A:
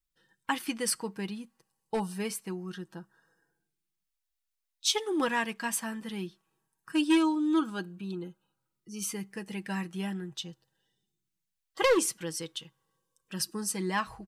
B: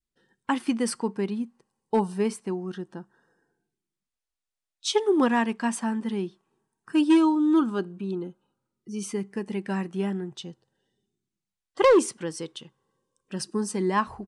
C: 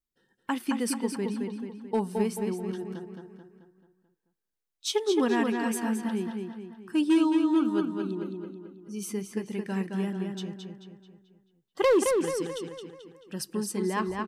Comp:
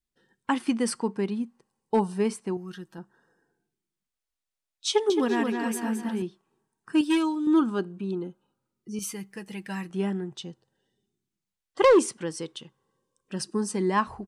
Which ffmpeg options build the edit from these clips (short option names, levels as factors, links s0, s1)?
-filter_complex "[0:a]asplit=3[s0][s1][s2];[1:a]asplit=5[s3][s4][s5][s6][s7];[s3]atrim=end=2.572[s8];[s0]atrim=start=2.568:end=2.982[s9];[s4]atrim=start=2.978:end=5.102[s10];[2:a]atrim=start=5.098:end=6.222[s11];[s5]atrim=start=6.218:end=7.012[s12];[s1]atrim=start=7.008:end=7.472[s13];[s6]atrim=start=7.468:end=8.992[s14];[s2]atrim=start=8.988:end=9.902[s15];[s7]atrim=start=9.898[s16];[s8][s9]acrossfade=d=0.004:c1=hsin:c2=hsin[s17];[s17][s10]acrossfade=d=0.004:c1=hsin:c2=hsin[s18];[s18][s11]acrossfade=d=0.004:c1=hsin:c2=hsin[s19];[s19][s12]acrossfade=d=0.004:c1=hsin:c2=hsin[s20];[s20][s13]acrossfade=d=0.004:c1=hsin:c2=hsin[s21];[s21][s14]acrossfade=d=0.004:c1=hsin:c2=hsin[s22];[s22][s15]acrossfade=d=0.004:c1=hsin:c2=hsin[s23];[s23][s16]acrossfade=d=0.004:c1=hsin:c2=hsin"